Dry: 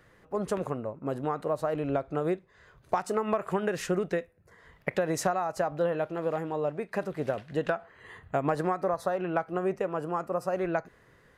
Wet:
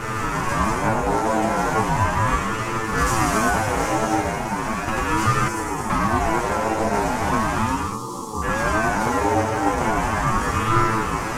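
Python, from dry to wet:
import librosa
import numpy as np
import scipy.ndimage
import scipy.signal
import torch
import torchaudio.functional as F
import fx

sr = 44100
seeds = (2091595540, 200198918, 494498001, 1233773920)

y = fx.bin_compress(x, sr, power=0.2)
y = fx.high_shelf(y, sr, hz=3900.0, db=9.0, at=(2.97, 3.49))
y = fx.cheby2_bandstop(y, sr, low_hz=790.0, high_hz=2600.0, order=4, stop_db=40, at=(7.66, 8.42))
y = fx.rev_gated(y, sr, seeds[0], gate_ms=320, shape='flat', drr_db=-1.0)
y = fx.leveller(y, sr, passes=1)
y = fx.comb_fb(y, sr, f0_hz=110.0, decay_s=0.24, harmonics='all', damping=0.0, mix_pct=100)
y = fx.chorus_voices(y, sr, voices=2, hz=0.23, base_ms=14, depth_ms=4.0, mix_pct=35)
y = fx.graphic_eq(y, sr, hz=(125, 250, 500, 1000, 2000, 4000, 8000), db=(4, 6, -10, -4, -5, -11, 5), at=(5.48, 5.9))
y = fx.ring_lfo(y, sr, carrier_hz=450.0, swing_pct=50, hz=0.37)
y = y * librosa.db_to_amplitude(7.5)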